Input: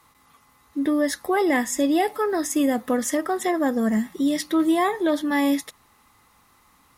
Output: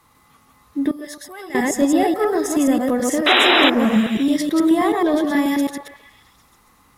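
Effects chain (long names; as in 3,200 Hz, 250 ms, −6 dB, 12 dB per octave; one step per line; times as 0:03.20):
delay that plays each chunk backwards 107 ms, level −2 dB
low-shelf EQ 490 Hz +4.5 dB
in parallel at −6 dB: soft clipping −13 dBFS, distortion −15 dB
0:00.91–0:01.55: on the sum: guitar amp tone stack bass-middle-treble 5-5-5
0:03.26–0:03.70: sound drawn into the spectrogram noise 230–4,000 Hz −11 dBFS
on a send: echo through a band-pass that steps 133 ms, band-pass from 530 Hz, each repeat 0.7 octaves, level −8.5 dB
on the sum: level −3.5 dB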